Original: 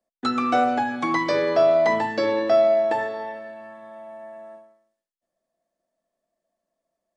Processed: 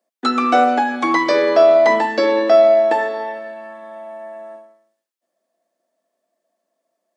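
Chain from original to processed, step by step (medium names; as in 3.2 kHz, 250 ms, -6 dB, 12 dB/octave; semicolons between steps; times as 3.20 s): high-pass 230 Hz 24 dB/octave; trim +6.5 dB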